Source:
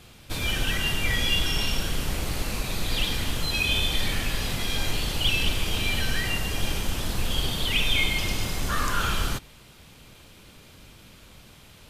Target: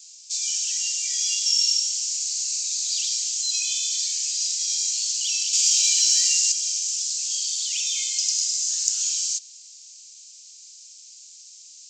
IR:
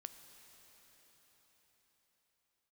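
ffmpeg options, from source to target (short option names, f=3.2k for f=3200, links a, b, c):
-filter_complex "[0:a]asettb=1/sr,asplit=3[a][b][c];[a]atrim=end=5.534[d];[b]atrim=start=5.53:end=6.52,asetpts=PTS-STARTPTS,afade=t=in:d=0.004:c=qsin,afade=t=out:st=0.986:d=0.004:c=qsin,acontrast=80[e];[c]atrim=start=6.516[f];[d][e]acrossfade=d=0.004:c1=hsin:c2=qsin[g];[g][f]acrossfade=d=0.004:c1=qsin:c2=hsin,asuperpass=centerf=5800:order=8:qfactor=0.73,asplit=2[h][i];[1:a]atrim=start_sample=2205[j];[i][j]afir=irnorm=-1:irlink=0,volume=-10.5dB[k];[h][k]amix=inputs=2:normalize=0,aresample=16000,aresample=44100,aexciter=amount=15.4:drive=6.6:freq=5.1k,volume=-6dB"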